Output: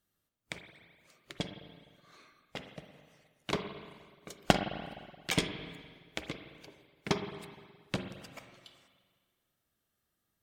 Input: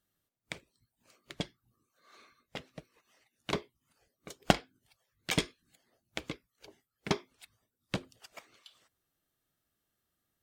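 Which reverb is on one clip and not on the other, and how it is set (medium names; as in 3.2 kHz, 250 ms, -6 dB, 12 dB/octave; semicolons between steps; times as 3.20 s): spring tank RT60 1.7 s, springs 42/53/58 ms, chirp 30 ms, DRR 6.5 dB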